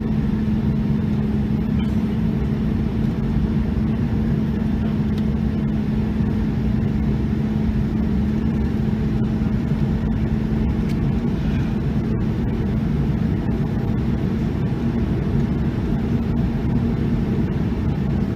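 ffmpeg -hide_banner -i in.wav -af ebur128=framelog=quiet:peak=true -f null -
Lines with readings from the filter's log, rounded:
Integrated loudness:
  I:         -21.3 LUFS
  Threshold: -31.3 LUFS
Loudness range:
  LRA:         0.6 LU
  Threshold: -41.3 LUFS
  LRA low:   -21.6 LUFS
  LRA high:  -21.1 LUFS
True peak:
  Peak:       -7.9 dBFS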